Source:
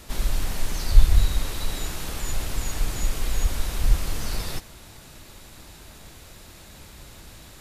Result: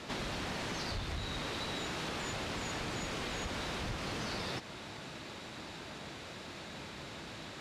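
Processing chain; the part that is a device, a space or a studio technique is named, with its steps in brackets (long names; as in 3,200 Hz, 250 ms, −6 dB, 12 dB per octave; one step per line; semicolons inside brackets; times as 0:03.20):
AM radio (band-pass filter 150–4,200 Hz; downward compressor, threshold −38 dBFS, peak gain reduction 10.5 dB; soft clipping −32.5 dBFS, distortion −22 dB)
level +4 dB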